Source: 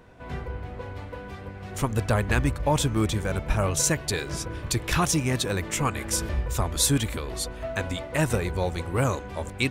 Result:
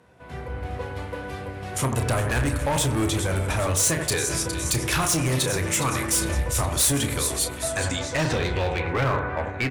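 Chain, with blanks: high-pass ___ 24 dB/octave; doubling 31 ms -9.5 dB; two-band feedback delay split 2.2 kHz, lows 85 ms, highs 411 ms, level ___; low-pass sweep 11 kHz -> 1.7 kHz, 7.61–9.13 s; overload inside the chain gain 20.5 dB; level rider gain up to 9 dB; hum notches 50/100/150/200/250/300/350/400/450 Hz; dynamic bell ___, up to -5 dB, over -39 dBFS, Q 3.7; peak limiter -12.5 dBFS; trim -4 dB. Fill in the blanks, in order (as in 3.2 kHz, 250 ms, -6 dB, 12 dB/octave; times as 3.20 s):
62 Hz, -11 dB, 200 Hz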